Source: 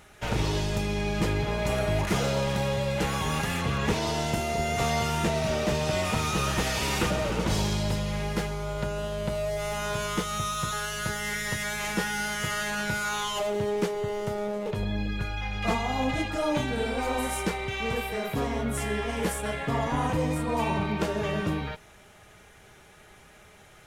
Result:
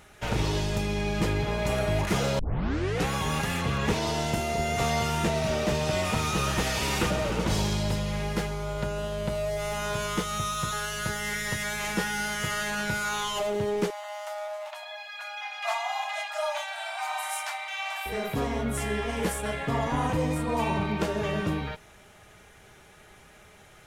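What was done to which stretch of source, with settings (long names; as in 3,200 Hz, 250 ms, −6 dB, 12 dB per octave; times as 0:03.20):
0:02.39: tape start 0.68 s
0:13.90–0:18.06: linear-phase brick-wall high-pass 590 Hz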